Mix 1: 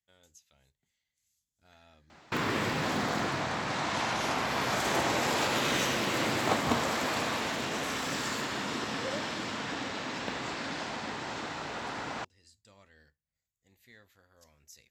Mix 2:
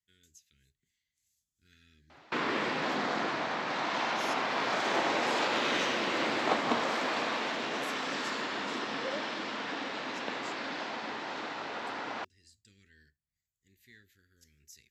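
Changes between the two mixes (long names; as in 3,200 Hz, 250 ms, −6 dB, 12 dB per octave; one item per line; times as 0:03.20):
speech: add elliptic band-stop filter 400–1,600 Hz
background: add three-way crossover with the lows and the highs turned down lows −22 dB, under 200 Hz, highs −22 dB, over 5,600 Hz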